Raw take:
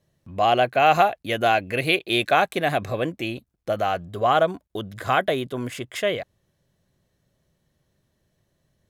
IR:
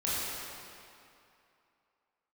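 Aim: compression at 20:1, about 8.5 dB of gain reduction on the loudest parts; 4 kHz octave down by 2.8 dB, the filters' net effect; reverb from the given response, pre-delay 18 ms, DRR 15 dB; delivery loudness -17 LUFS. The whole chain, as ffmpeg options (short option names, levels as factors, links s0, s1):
-filter_complex "[0:a]equalizer=f=4000:t=o:g=-4,acompressor=threshold=0.0891:ratio=20,asplit=2[s0][s1];[1:a]atrim=start_sample=2205,adelay=18[s2];[s1][s2]afir=irnorm=-1:irlink=0,volume=0.0668[s3];[s0][s3]amix=inputs=2:normalize=0,volume=3.55"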